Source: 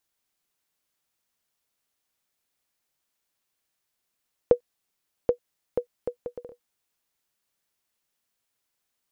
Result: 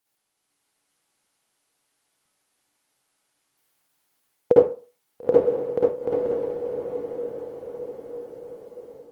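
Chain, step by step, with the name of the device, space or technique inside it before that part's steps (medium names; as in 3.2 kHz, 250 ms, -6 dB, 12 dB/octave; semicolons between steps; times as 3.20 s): 4.54–5.94 s: doubling 34 ms -13 dB; echo that smears into a reverb 936 ms, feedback 52%, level -8 dB; far-field microphone of a smart speaker (reverberation RT60 0.35 s, pre-delay 50 ms, DRR -6 dB; high-pass 100 Hz 12 dB/octave; level rider gain up to 4 dB; Opus 24 kbps 48 kHz)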